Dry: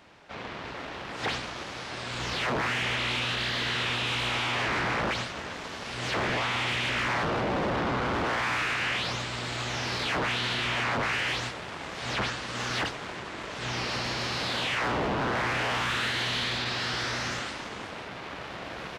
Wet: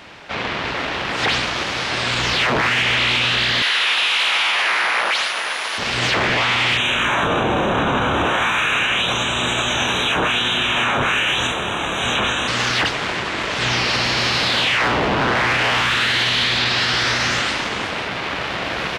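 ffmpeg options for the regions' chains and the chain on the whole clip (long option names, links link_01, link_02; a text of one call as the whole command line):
ffmpeg -i in.wav -filter_complex "[0:a]asettb=1/sr,asplit=3[link_01][link_02][link_03];[link_01]atrim=end=3.624[link_04];[link_02]atrim=start=3.62:end=5.78,asetpts=PTS-STARTPTS,afade=type=in:duration=0.004:curve=qsin,afade=type=out:start_time=2.156:duration=0.004:curve=qsin,highpass=690,aeval=exprs='val(0)+0.00251*sin(2*PI*9900*n/s)':channel_layout=same[link_05];[link_03]atrim=start=5.776[link_06];[link_04][link_05]acrossfade=duration=0.004:curve1=hsin:curve2=qsin[link_07];[link_07][link_06]acrossfade=duration=0.004:curve1=qsin:curve2=hsin,asettb=1/sr,asplit=3[link_08][link_09][link_10];[link_08]atrim=end=6.774[link_11];[link_09]atrim=start=6.77:end=12.48,asetpts=PTS-STARTPTS,afade=type=in:duration=0.004:curve=qsin,afade=type=out:start_time=5.706:duration=0.004:curve=qsin,asuperstop=centerf=4800:order=20:qfactor=2.6,equalizer=frequency=2000:width_type=o:width=0.21:gain=-10.5,asplit=2[link_12][link_13];[link_13]adelay=28,volume=-2.5dB[link_14];[link_12][link_14]amix=inputs=2:normalize=0,atrim=end_sample=251811[link_15];[link_10]atrim=start=12.476[link_16];[link_11][link_15]acrossfade=duration=0.004:curve1=hsin:curve2=qsin[link_17];[link_17][link_16]acrossfade=duration=0.004:curve1=qsin:curve2=hsin,equalizer=frequency=2800:width=0.69:gain=5,acontrast=77,alimiter=limit=-16.5dB:level=0:latency=1,volume=5.5dB" out.wav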